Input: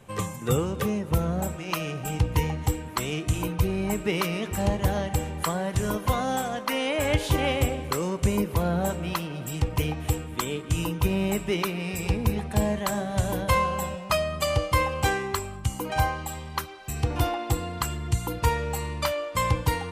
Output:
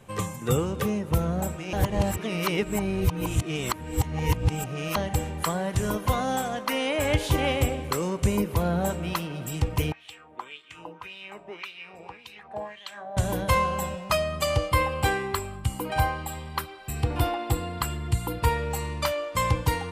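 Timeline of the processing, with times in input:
0:01.73–0:04.96: reverse
0:09.92–0:13.17: LFO wah 1.8 Hz 660–3,500 Hz, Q 2.8
0:14.69–0:18.71: parametric band 6,200 Hz −12.5 dB 0.24 octaves

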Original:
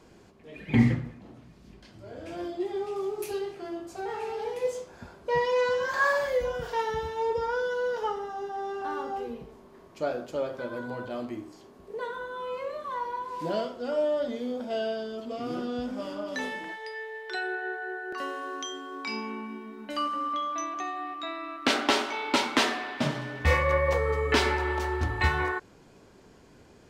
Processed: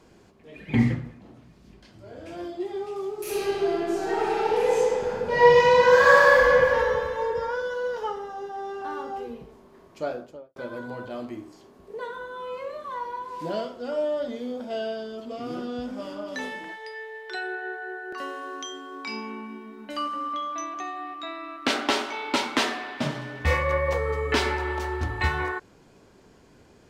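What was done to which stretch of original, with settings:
0:03.21–0:06.48: thrown reverb, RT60 2.8 s, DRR −10.5 dB
0:10.05–0:10.56: fade out and dull

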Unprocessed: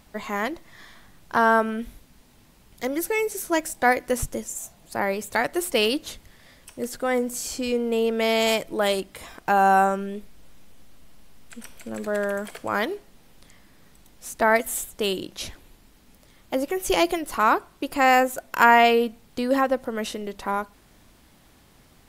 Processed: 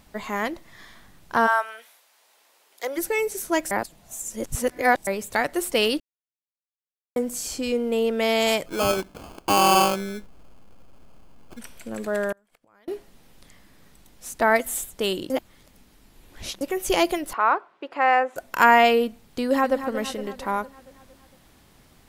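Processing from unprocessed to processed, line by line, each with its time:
0:01.46–0:02.96: high-pass filter 800 Hz → 390 Hz 24 dB per octave
0:03.71–0:05.07: reverse
0:06.00–0:07.16: silence
0:08.66–0:11.59: sample-rate reduction 1,900 Hz
0:12.32–0:12.88: gate with flip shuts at −26 dBFS, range −34 dB
0:15.30–0:16.61: reverse
0:17.33–0:18.36: band-pass filter 500–2,100 Hz
0:19.40–0:19.84: delay throw 230 ms, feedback 60%, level −11 dB

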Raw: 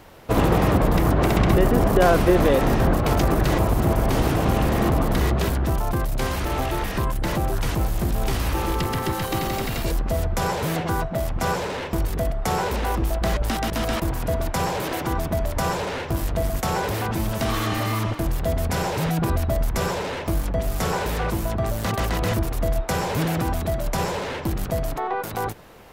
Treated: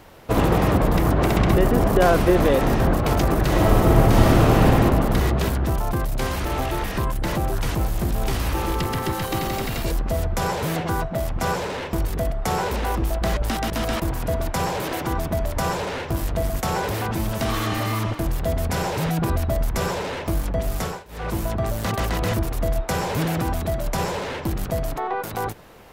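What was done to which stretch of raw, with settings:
0:03.50–0:04.64: thrown reverb, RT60 2.4 s, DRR −3.5 dB
0:20.76–0:21.36: duck −23 dB, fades 0.28 s

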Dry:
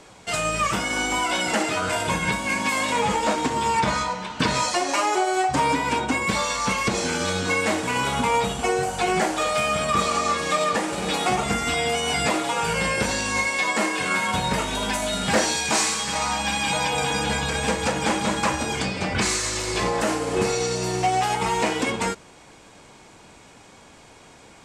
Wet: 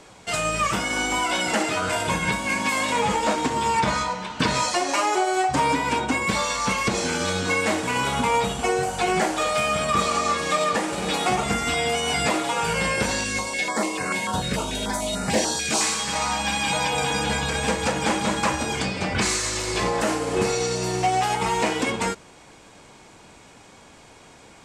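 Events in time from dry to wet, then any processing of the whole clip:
0:13.24–0:15.81: notch on a step sequencer 6.8 Hz 910–3,300 Hz

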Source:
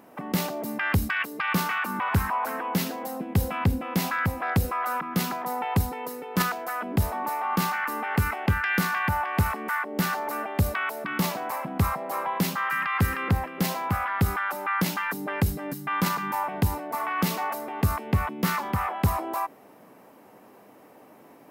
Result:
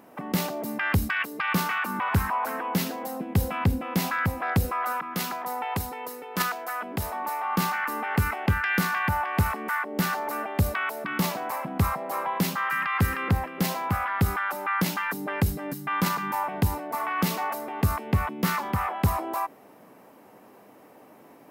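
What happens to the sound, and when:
0:04.92–0:07.57: low-shelf EQ 320 Hz −9.5 dB

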